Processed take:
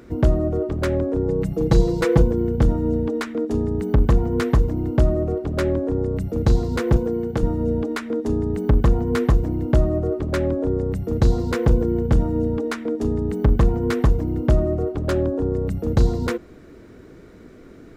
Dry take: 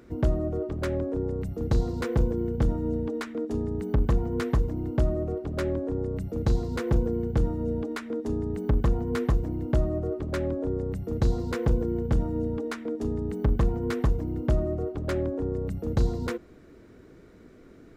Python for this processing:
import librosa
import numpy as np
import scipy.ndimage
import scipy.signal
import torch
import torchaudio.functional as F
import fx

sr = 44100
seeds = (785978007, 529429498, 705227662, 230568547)

y = fx.comb(x, sr, ms=6.1, depth=0.9, at=(1.28, 2.22))
y = fx.highpass(y, sr, hz=230.0, slope=6, at=(6.97, 7.43))
y = fx.peak_eq(y, sr, hz=2100.0, db=-7.5, octaves=0.3, at=(15.09, 15.52))
y = F.gain(torch.from_numpy(y), 7.0).numpy()